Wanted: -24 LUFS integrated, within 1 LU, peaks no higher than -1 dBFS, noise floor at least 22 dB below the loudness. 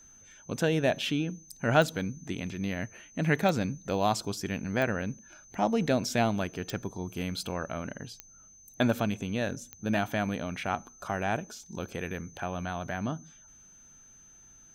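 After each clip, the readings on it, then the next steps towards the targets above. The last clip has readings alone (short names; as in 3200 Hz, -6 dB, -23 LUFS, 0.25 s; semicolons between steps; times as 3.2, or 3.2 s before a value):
clicks 6; steady tone 6200 Hz; tone level -53 dBFS; loudness -31.0 LUFS; peak -9.5 dBFS; loudness target -24.0 LUFS
-> de-click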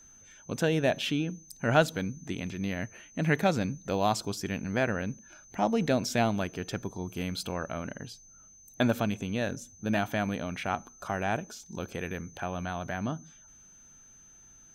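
clicks 0; steady tone 6200 Hz; tone level -53 dBFS
-> notch 6200 Hz, Q 30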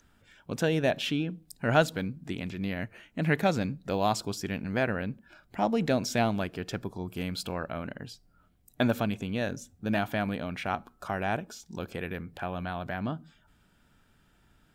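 steady tone none; loudness -31.0 LUFS; peak -9.5 dBFS; loudness target -24.0 LUFS
-> gain +7 dB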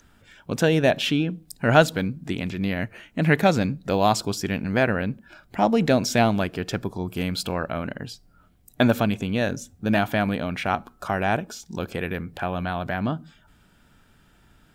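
loudness -24.0 LUFS; peak -2.5 dBFS; noise floor -58 dBFS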